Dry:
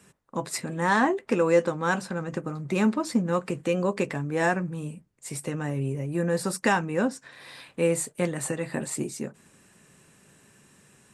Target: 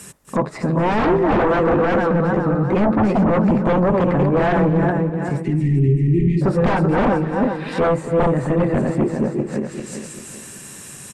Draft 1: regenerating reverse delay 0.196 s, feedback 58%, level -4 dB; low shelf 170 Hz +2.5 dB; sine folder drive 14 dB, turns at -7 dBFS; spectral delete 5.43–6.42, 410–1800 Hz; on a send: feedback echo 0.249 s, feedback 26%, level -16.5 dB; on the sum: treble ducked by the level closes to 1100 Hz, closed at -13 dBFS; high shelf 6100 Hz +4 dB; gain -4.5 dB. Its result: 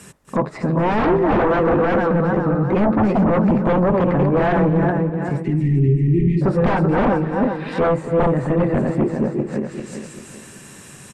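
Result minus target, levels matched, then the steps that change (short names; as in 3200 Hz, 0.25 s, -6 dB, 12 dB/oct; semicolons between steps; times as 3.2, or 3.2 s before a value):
8000 Hz band -6.0 dB
change: high shelf 6100 Hz +14 dB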